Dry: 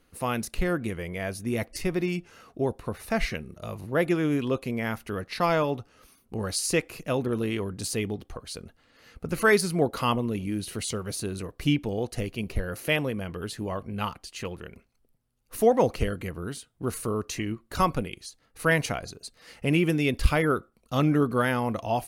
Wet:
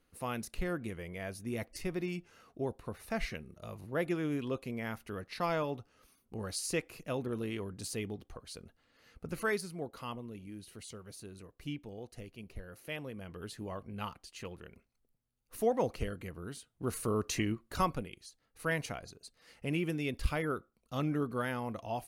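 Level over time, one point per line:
0:09.28 −9 dB
0:09.76 −16.5 dB
0:12.87 −16.5 dB
0:13.45 −9.5 dB
0:16.43 −9.5 dB
0:17.39 −1 dB
0:18.08 −10.5 dB

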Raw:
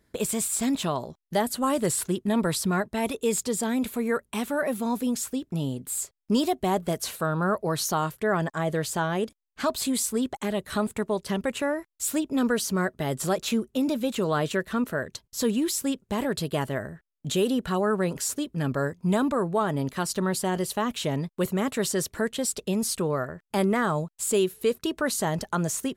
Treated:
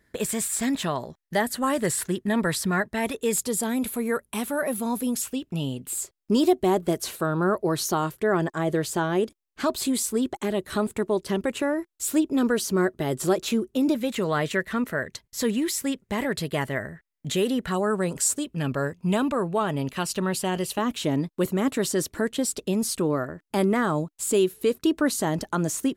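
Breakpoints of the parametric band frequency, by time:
parametric band +9.5 dB 0.4 octaves
1,800 Hz
from 0:03.33 11,000 Hz
from 0:05.22 2,800 Hz
from 0:05.93 350 Hz
from 0:13.95 2,000 Hz
from 0:17.72 8,100 Hz
from 0:18.45 2,700 Hz
from 0:20.78 300 Hz

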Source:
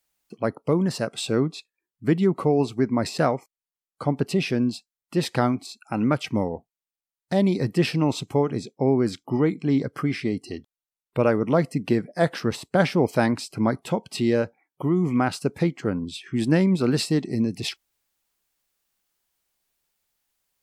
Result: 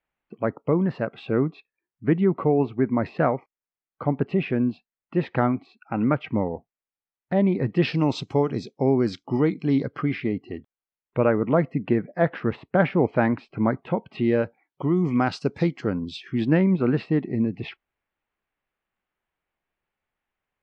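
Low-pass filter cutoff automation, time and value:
low-pass filter 24 dB per octave
0:07.62 2,500 Hz
0:08.03 5,600 Hz
0:09.47 5,600 Hz
0:10.50 2,500 Hz
0:14.09 2,500 Hz
0:14.99 5,400 Hz
0:16.23 5,400 Hz
0:16.64 2,500 Hz

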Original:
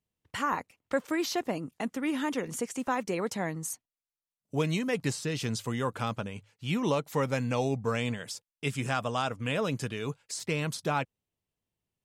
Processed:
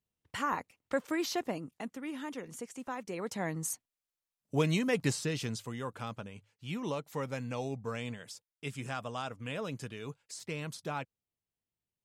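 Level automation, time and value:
0:01.43 −3 dB
0:02.04 −9.5 dB
0:03.03 −9.5 dB
0:03.60 0 dB
0:05.20 0 dB
0:05.70 −8 dB

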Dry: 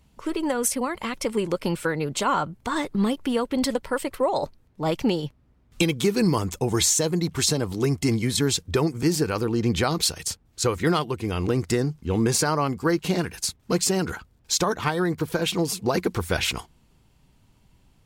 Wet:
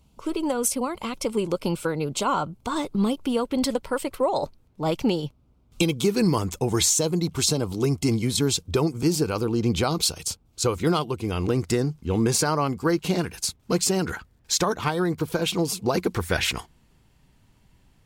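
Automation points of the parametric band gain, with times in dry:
parametric band 1,800 Hz 0.35 octaves
−14 dB
from 0:03.40 −7 dB
from 0:05.25 −14.5 dB
from 0:06.09 −3 dB
from 0:06.89 −11.5 dB
from 0:11.27 −4 dB
from 0:14.05 +4.5 dB
from 0:14.65 −5.5 dB
from 0:16.14 +5 dB

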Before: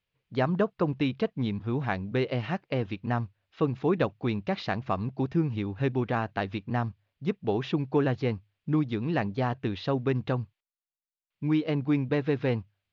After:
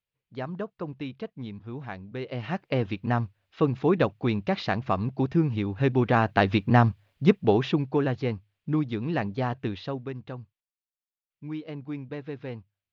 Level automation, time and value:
0:02.18 −8 dB
0:02.64 +3 dB
0:05.77 +3 dB
0:06.51 +10 dB
0:07.28 +10 dB
0:07.97 0 dB
0:09.68 0 dB
0:10.15 −9.5 dB

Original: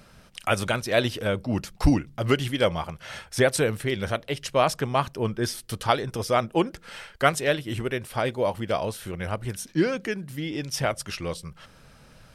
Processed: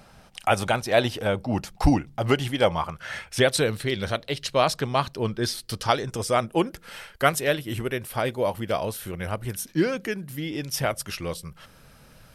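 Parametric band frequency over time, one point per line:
parametric band +9.5 dB 0.42 octaves
0:02.67 790 Hz
0:03.59 4,100 Hz
0:05.58 4,100 Hz
0:06.65 12,000 Hz

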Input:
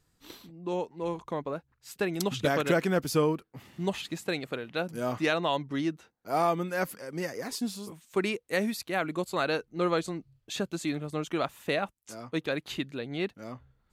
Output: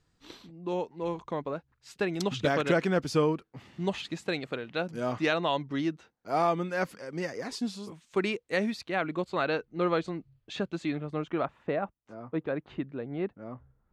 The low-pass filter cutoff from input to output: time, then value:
0:08.43 6,000 Hz
0:09.21 3,500 Hz
0:10.81 3,500 Hz
0:11.74 1,300 Hz

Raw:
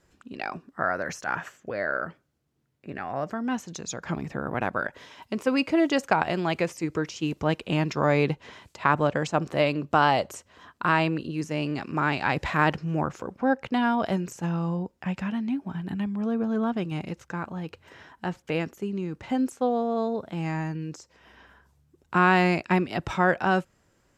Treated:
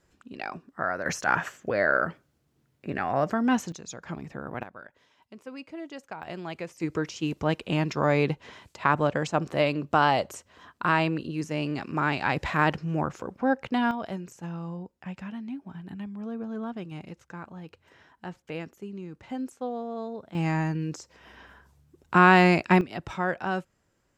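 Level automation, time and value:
−2.5 dB
from 0:01.06 +5 dB
from 0:03.72 −6 dB
from 0:04.63 −17 dB
from 0:06.23 −10 dB
from 0:06.80 −1 dB
from 0:13.91 −8 dB
from 0:20.35 +3 dB
from 0:22.81 −6 dB

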